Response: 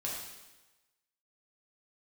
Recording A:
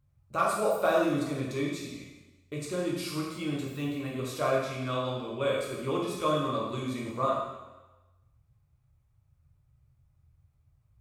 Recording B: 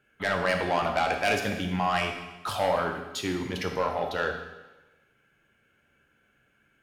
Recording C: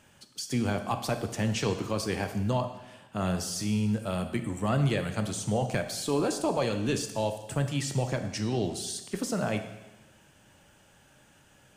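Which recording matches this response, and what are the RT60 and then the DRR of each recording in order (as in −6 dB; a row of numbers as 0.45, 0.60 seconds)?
A; 1.1, 1.1, 1.1 seconds; −4.5, 2.5, 6.5 decibels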